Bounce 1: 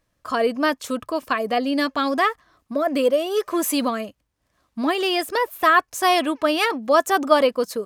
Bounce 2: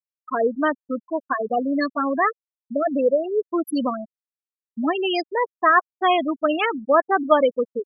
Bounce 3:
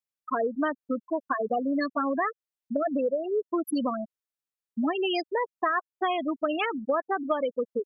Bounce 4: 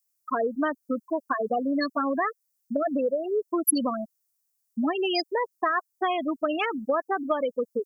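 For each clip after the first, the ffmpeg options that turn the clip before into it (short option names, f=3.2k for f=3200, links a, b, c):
-af "afftfilt=real='re*gte(hypot(re,im),0.251)':imag='im*gte(hypot(re,im),0.251)':win_size=1024:overlap=0.75"
-af "acompressor=threshold=-24dB:ratio=6"
-af "aexciter=amount=6.1:drive=3.1:freq=4.8k,volume=1dB"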